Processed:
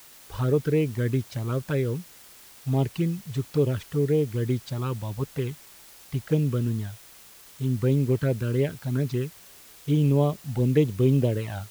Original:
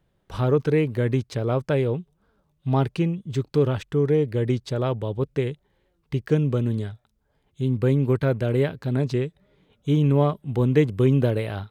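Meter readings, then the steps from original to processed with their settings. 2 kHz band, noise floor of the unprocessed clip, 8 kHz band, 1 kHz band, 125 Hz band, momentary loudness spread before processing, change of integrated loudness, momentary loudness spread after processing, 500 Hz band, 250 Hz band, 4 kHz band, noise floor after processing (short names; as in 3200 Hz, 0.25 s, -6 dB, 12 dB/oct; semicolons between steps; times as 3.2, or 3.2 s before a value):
-4.5 dB, -70 dBFS, n/a, -6.0 dB, -2.0 dB, 10 LU, -2.5 dB, 12 LU, -3.5 dB, -2.5 dB, -2.0 dB, -50 dBFS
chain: envelope flanger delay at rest 2.8 ms, full sweep at -15 dBFS; requantised 8-bit, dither triangular; gain -1.5 dB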